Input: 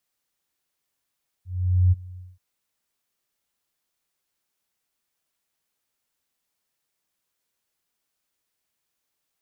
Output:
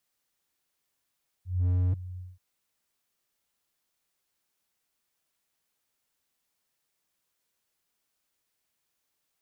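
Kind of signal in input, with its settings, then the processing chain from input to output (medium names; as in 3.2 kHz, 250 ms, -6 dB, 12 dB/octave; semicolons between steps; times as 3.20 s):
ADSR sine 90.9 Hz, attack 468 ms, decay 26 ms, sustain -23 dB, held 0.73 s, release 203 ms -13 dBFS
slew-rate limiter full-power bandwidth 5.7 Hz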